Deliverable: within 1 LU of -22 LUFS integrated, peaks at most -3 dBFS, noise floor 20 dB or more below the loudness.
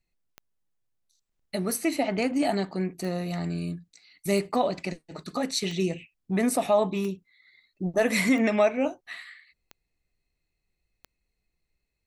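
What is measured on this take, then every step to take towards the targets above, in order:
clicks found 9; loudness -27.0 LUFS; peak level -10.5 dBFS; loudness target -22.0 LUFS
-> de-click; trim +5 dB

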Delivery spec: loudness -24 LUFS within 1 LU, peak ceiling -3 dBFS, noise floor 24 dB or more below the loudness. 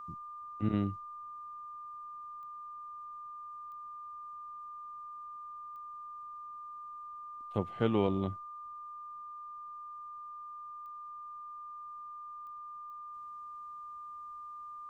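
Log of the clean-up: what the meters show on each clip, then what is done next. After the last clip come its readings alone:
clicks found 6; steady tone 1.2 kHz; tone level -43 dBFS; loudness -41.0 LUFS; peak level -15.5 dBFS; loudness target -24.0 LUFS
-> de-click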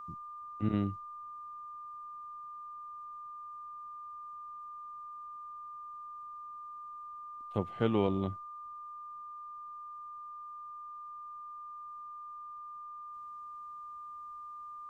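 clicks found 0; steady tone 1.2 kHz; tone level -43 dBFS
-> band-stop 1.2 kHz, Q 30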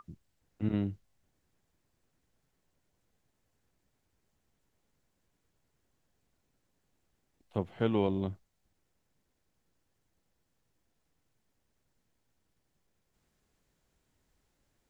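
steady tone not found; loudness -33.5 LUFS; peak level -16.0 dBFS; loudness target -24.0 LUFS
-> trim +9.5 dB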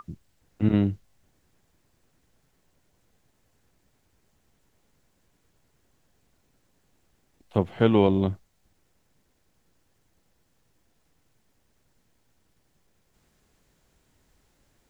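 loudness -24.0 LUFS; peak level -6.5 dBFS; noise floor -69 dBFS

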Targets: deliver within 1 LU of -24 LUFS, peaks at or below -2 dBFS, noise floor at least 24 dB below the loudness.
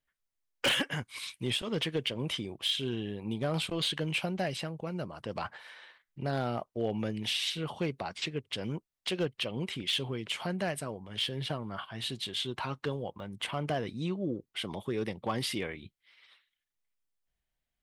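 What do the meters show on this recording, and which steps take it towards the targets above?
clipped samples 0.2%; clipping level -23.0 dBFS; dropouts 1; longest dropout 1.1 ms; loudness -34.0 LUFS; peak level -23.0 dBFS; loudness target -24.0 LUFS
-> clip repair -23 dBFS; interpolate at 13.20 s, 1.1 ms; trim +10 dB

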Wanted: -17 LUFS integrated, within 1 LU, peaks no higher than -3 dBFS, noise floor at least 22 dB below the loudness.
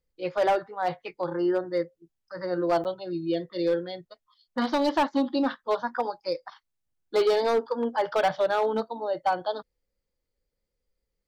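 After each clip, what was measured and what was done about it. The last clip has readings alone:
clipped samples 1.2%; clipping level -17.5 dBFS; dropouts 1; longest dropout 8.7 ms; loudness -27.5 LUFS; peak level -17.5 dBFS; loudness target -17.0 LUFS
-> clip repair -17.5 dBFS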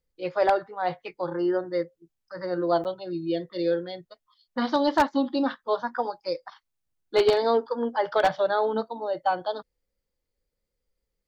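clipped samples 0.0%; dropouts 1; longest dropout 8.7 ms
-> interpolate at 2.84 s, 8.7 ms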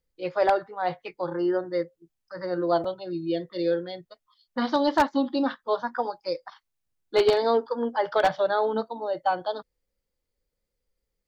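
dropouts 0; loudness -26.5 LUFS; peak level -8.5 dBFS; loudness target -17.0 LUFS
-> trim +9.5 dB; peak limiter -3 dBFS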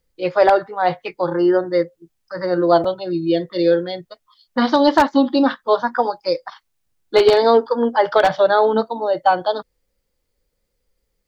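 loudness -17.5 LUFS; peak level -3.0 dBFS; noise floor -73 dBFS

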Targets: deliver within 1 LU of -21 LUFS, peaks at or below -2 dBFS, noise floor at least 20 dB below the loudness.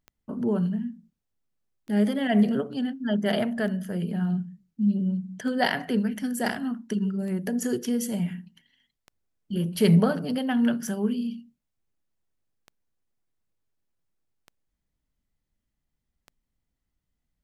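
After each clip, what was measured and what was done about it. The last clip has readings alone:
clicks found 10; loudness -26.5 LUFS; peak level -9.0 dBFS; loudness target -21.0 LUFS
-> de-click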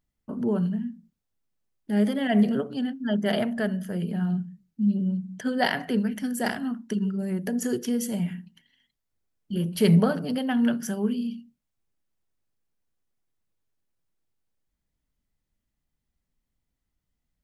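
clicks found 0; loudness -26.5 LUFS; peak level -9.0 dBFS; loudness target -21.0 LUFS
-> trim +5.5 dB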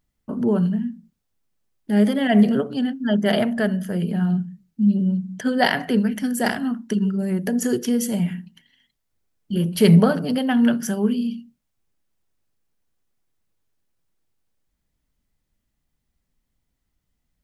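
loudness -21.0 LUFS; peak level -3.5 dBFS; noise floor -76 dBFS

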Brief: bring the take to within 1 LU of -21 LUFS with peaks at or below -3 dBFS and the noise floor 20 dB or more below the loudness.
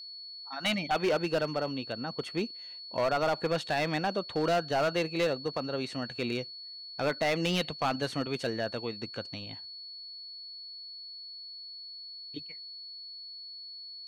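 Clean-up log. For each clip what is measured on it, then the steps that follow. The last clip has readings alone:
clipped samples 1.3%; clipping level -22.5 dBFS; steady tone 4.4 kHz; tone level -42 dBFS; loudness -33.0 LUFS; peak level -22.5 dBFS; loudness target -21.0 LUFS
-> clip repair -22.5 dBFS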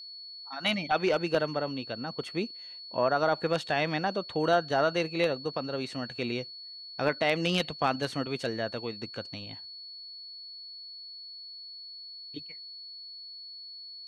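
clipped samples 0.0%; steady tone 4.4 kHz; tone level -42 dBFS
-> band-stop 4.4 kHz, Q 30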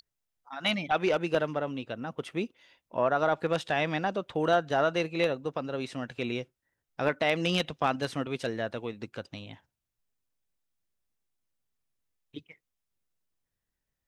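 steady tone not found; loudness -30.0 LUFS; peak level -13.0 dBFS; loudness target -21.0 LUFS
-> trim +9 dB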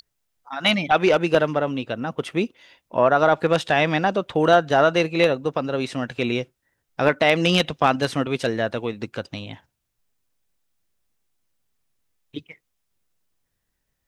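loudness -21.0 LUFS; peak level -4.0 dBFS; noise floor -77 dBFS

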